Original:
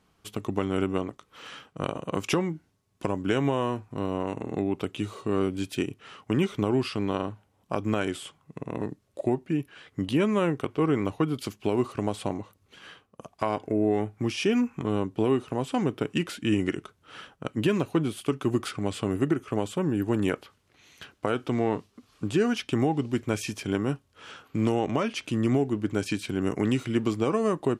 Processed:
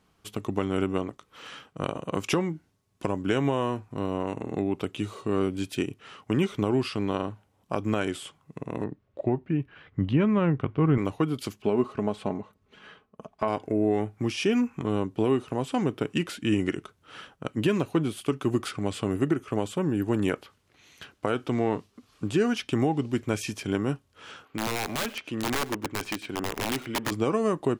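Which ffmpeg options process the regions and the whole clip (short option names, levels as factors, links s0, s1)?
-filter_complex "[0:a]asettb=1/sr,asplit=3[s0][s1][s2];[s0]atrim=end=8.844[s3];[s1]atrim=start=8.84:end=10.98,asetpts=PTS-STARTPTS,afade=t=in:d=0.004:c=qsin,afade=t=out:st=2.136:d=0.004:c=qsin,asubboost=boost=6:cutoff=190,lowpass=2400[s4];[s2]atrim=start=10.976[s5];[s3][s4]acrossfade=d=0.004:c1=hsin:c2=qsin[s6];[s6][s5]acrossfade=d=0.004:c1=qsin:c2=hsin,asettb=1/sr,asplit=3[s7][s8][s9];[s7]atrim=end=11.624[s10];[s8]atrim=start=11.62:end=13.48,asetpts=PTS-STARTPTS,afade=t=in:d=0.004:c=qsin,afade=t=out:st=1.856:d=0.004:c=qsin,lowpass=f=2000:p=1,aecho=1:1:4.7:0.45,atrim=end_sample=82026[s11];[s9]atrim=start=13.476[s12];[s10][s11]acrossfade=d=0.004:c1=hsin:c2=qsin[s13];[s13][s12]acrossfade=d=0.004:c1=qsin:c2=hsin,asettb=1/sr,asplit=3[s14][s15][s16];[s14]atrim=end=24.454[s17];[s15]atrim=start=24.45:end=27.12,asetpts=PTS-STARTPTS,afade=t=in:d=0.004:c=qsin,afade=t=out:st=2.666:d=0.004:c=qsin,bass=f=250:g=-9,treble=f=4000:g=-10,aeval=exprs='(mod(12.6*val(0)+1,2)-1)/12.6':c=same,aecho=1:1:100:0.1,atrim=end_sample=117747[s18];[s16]atrim=start=27.116[s19];[s17][s18]acrossfade=d=0.004:c1=hsin:c2=qsin[s20];[s20][s19]acrossfade=d=0.004:c1=qsin:c2=hsin"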